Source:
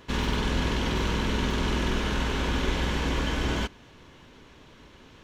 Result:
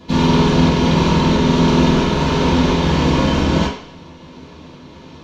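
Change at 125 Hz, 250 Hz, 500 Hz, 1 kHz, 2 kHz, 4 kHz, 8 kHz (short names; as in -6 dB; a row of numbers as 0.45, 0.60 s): +13.5, +16.0, +14.0, +13.5, +6.5, +9.0, +8.5 dB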